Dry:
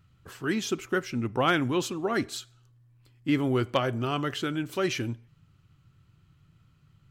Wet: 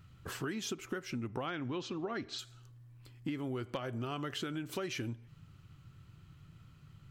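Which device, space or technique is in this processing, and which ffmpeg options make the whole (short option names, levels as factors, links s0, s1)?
serial compression, leveller first: -filter_complex "[0:a]acompressor=threshold=0.0355:ratio=2,acompressor=threshold=0.01:ratio=6,asettb=1/sr,asplit=3[s0][s1][s2];[s0]atrim=end=1.464[s3];[s1]atrim=start=1.46:end=2.39,asetpts=PTS-STARTPTS,afade=t=in:d=0.004:c=qsin,afade=t=out:st=0.926:d=0.004:c=qsin,lowpass=f=5400:w=0.5412,lowpass=f=5400:w=1.3066[s4];[s2]atrim=start=2.386[s5];[s3][s4]acrossfade=d=0.004:c1=hsin:c2=qsin[s6];[s6][s5]acrossfade=d=0.004:c1=qsin:c2=hsin,volume=1.58"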